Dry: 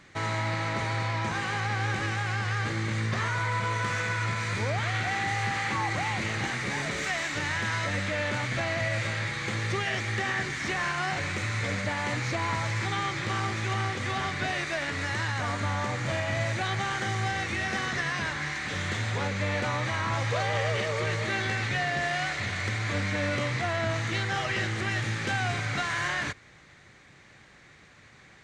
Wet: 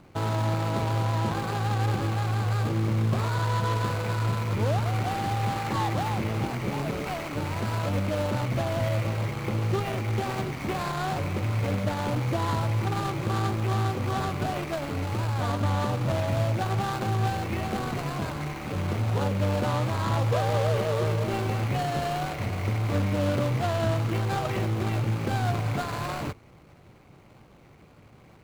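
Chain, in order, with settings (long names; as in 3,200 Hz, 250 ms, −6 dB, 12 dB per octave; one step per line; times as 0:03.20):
running median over 25 samples
level +5.5 dB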